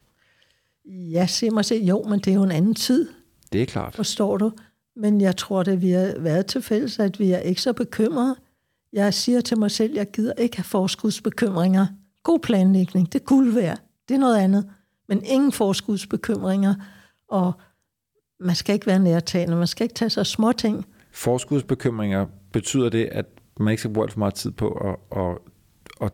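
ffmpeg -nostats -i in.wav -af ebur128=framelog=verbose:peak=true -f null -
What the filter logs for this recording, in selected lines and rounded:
Integrated loudness:
  I:         -22.0 LUFS
  Threshold: -32.5 LUFS
Loudness range:
  LRA:         3.9 LU
  Threshold: -42.4 LUFS
  LRA low:   -24.4 LUFS
  LRA high:  -20.5 LUFS
True peak:
  Peak:       -8.1 dBFS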